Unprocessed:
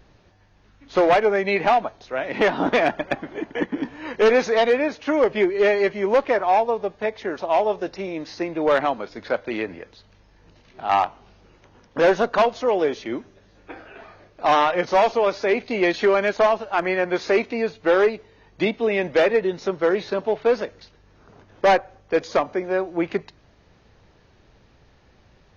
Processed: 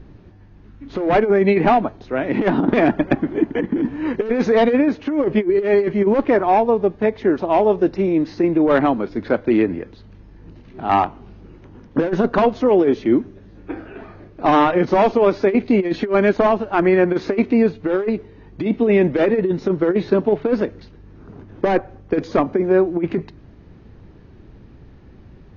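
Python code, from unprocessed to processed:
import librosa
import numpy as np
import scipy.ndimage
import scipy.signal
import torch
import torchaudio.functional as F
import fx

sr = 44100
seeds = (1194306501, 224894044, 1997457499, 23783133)

y = fx.lowpass(x, sr, hz=1700.0, slope=6)
y = fx.low_shelf_res(y, sr, hz=430.0, db=7.5, q=1.5)
y = fx.over_compress(y, sr, threshold_db=-17.0, ratio=-0.5)
y = y * librosa.db_to_amplitude(3.0)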